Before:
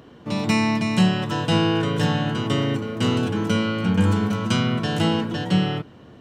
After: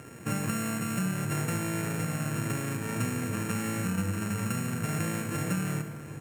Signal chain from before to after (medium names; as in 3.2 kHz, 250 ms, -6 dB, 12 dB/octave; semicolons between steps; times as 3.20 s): sorted samples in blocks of 32 samples; graphic EQ 125/500/1000/2000/4000/8000 Hz +8/+5/-4/+11/-12/+10 dB; compression 12:1, threshold -24 dBFS, peak gain reduction 15.5 dB; echo from a far wall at 130 m, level -14 dB; on a send at -8 dB: reverberation RT60 1.2 s, pre-delay 47 ms; on the sum: trim -3.5 dB